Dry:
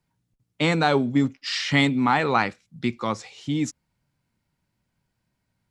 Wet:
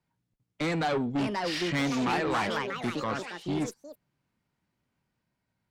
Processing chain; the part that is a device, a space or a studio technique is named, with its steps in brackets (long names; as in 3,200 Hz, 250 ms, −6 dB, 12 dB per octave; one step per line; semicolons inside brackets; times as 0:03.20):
delay with pitch and tempo change per echo 700 ms, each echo +4 semitones, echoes 3, each echo −6 dB
tube preamp driven hard (tube saturation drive 23 dB, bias 0.5; low-shelf EQ 130 Hz −7 dB; high-shelf EQ 4,600 Hz −8 dB)